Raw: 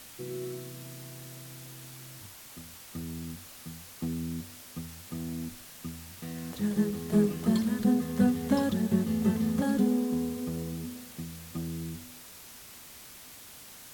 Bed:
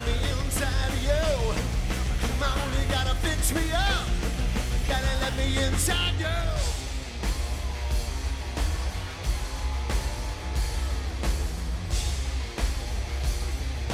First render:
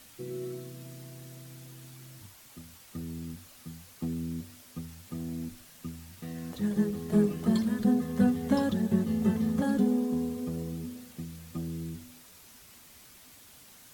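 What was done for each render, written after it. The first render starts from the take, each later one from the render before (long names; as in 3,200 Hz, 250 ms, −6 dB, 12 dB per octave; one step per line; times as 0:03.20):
broadband denoise 6 dB, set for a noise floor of −49 dBFS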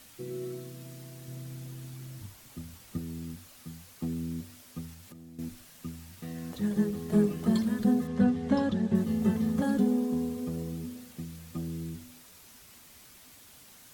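0:01.28–0:02.98: low-shelf EQ 340 Hz +8 dB
0:04.93–0:05.39: downward compressor 16 to 1, threshold −45 dBFS
0:08.07–0:08.95: high-frequency loss of the air 80 metres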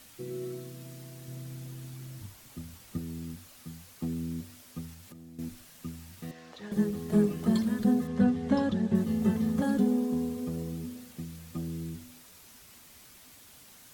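0:06.31–0:06.72: three-way crossover with the lows and the highs turned down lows −18 dB, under 450 Hz, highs −20 dB, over 6,100 Hz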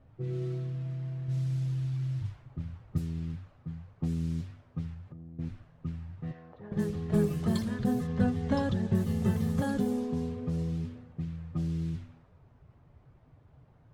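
low shelf with overshoot 170 Hz +6.5 dB, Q 3
low-pass that shuts in the quiet parts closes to 620 Hz, open at −24.5 dBFS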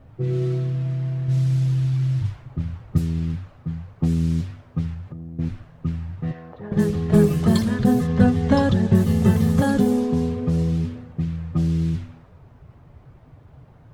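level +11 dB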